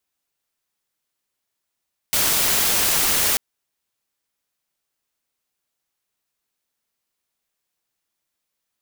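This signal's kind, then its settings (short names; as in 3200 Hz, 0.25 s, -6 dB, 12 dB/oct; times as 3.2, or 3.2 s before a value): noise white, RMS -19 dBFS 1.24 s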